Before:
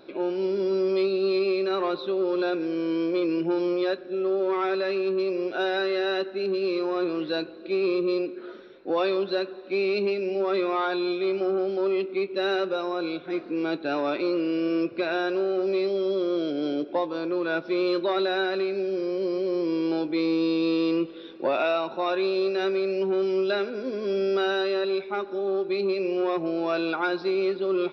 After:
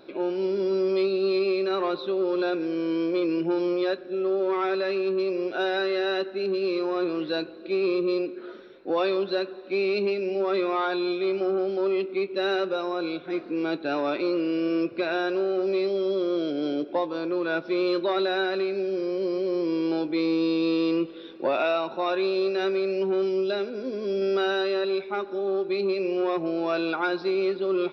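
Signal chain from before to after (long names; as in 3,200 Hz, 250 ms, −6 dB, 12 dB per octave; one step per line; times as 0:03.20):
0:23.28–0:24.22: dynamic equaliser 1,500 Hz, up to −6 dB, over −41 dBFS, Q 0.71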